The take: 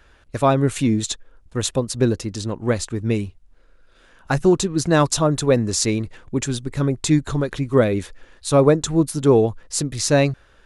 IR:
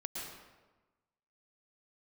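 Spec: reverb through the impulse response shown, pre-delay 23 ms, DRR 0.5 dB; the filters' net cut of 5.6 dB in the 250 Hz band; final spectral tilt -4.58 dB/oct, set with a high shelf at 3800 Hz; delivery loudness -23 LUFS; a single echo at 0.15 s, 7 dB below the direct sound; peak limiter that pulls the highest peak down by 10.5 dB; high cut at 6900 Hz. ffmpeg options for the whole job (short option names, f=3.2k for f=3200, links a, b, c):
-filter_complex "[0:a]lowpass=6.9k,equalizer=f=250:t=o:g=-8,highshelf=f=3.8k:g=5.5,alimiter=limit=-14dB:level=0:latency=1,aecho=1:1:150:0.447,asplit=2[a][b];[1:a]atrim=start_sample=2205,adelay=23[c];[b][c]afir=irnorm=-1:irlink=0,volume=-1dB[d];[a][d]amix=inputs=2:normalize=0,volume=-1dB"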